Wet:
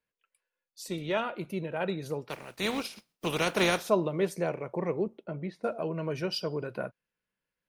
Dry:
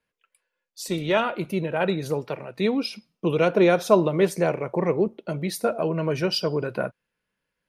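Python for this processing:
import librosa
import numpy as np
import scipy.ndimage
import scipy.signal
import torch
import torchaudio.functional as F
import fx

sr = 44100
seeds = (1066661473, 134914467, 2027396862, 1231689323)

y = fx.spec_flatten(x, sr, power=0.5, at=(2.29, 3.88), fade=0.02)
y = fx.lowpass(y, sr, hz=2000.0, slope=12, at=(5.23, 5.63), fade=0.02)
y = y * 10.0 ** (-8.0 / 20.0)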